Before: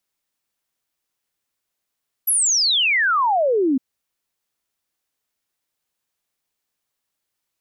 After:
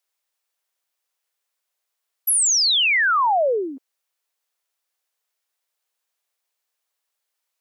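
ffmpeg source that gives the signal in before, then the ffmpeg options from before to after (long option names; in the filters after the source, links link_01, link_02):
-f lavfi -i "aevalsrc='0.178*clip(min(t,1.51-t)/0.01,0,1)*sin(2*PI*12000*1.51/log(250/12000)*(exp(log(250/12000)*t/1.51)-1))':duration=1.51:sample_rate=44100"
-af "highpass=frequency=440:width=0.5412,highpass=frequency=440:width=1.3066"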